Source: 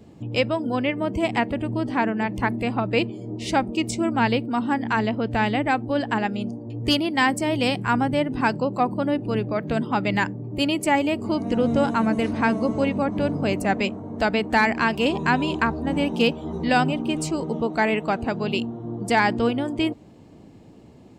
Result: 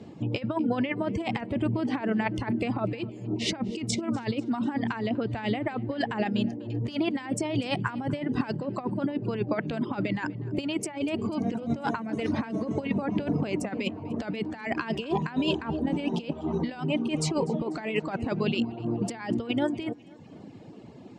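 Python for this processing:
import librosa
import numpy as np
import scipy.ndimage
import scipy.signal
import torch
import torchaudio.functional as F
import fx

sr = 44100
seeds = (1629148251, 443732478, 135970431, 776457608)

y = fx.dereverb_blind(x, sr, rt60_s=0.82)
y = fx.over_compress(y, sr, threshold_db=-27.0, ratio=-0.5)
y = fx.bandpass_edges(y, sr, low_hz=110.0, high_hz=5900.0)
y = fx.echo_feedback(y, sr, ms=246, feedback_pct=53, wet_db=-22.5)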